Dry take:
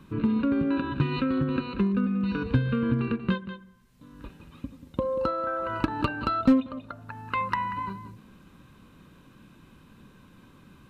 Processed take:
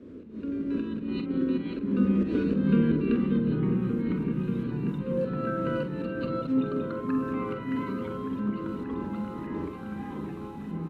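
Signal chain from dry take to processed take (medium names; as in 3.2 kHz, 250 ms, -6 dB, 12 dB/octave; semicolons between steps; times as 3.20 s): fade-in on the opening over 2.17 s; wind noise 260 Hz -36 dBFS; high-pass 140 Hz 12 dB/octave; bass shelf 390 Hz +7.5 dB; slow attack 218 ms; 3.48–4.88 s: compression, threshold -43 dBFS, peak gain reduction 12.5 dB; static phaser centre 330 Hz, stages 4; doubling 46 ms -9 dB; delay with an opening low-pass 585 ms, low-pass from 750 Hz, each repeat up 1 oct, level -3 dB; ever faster or slower copies 197 ms, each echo -4 st, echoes 2, each echo -6 dB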